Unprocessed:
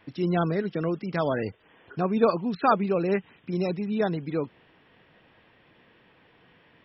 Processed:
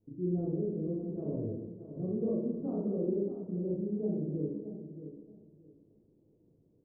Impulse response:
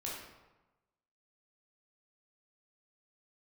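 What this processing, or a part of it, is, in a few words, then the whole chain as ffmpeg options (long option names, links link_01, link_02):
next room: -filter_complex "[0:a]lowpass=frequency=410:width=0.5412,lowpass=frequency=410:width=1.3066[link_01];[1:a]atrim=start_sample=2205[link_02];[link_01][link_02]afir=irnorm=-1:irlink=0,aecho=1:1:625|1250|1875:0.282|0.0592|0.0124,volume=-5.5dB"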